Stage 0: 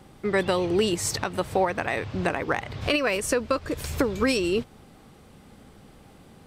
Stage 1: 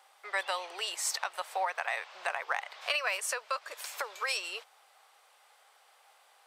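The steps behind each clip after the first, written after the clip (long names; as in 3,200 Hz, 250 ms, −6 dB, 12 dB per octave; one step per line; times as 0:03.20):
inverse Chebyshev high-pass filter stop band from 270 Hz, stop band 50 dB
level −4 dB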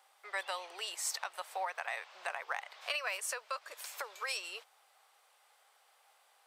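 high-shelf EQ 9,100 Hz +4.5 dB
level −5.5 dB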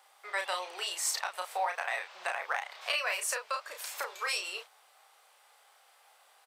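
double-tracking delay 33 ms −5 dB
level +4 dB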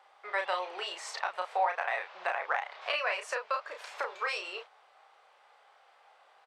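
head-to-tape spacing loss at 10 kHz 26 dB
level +5.5 dB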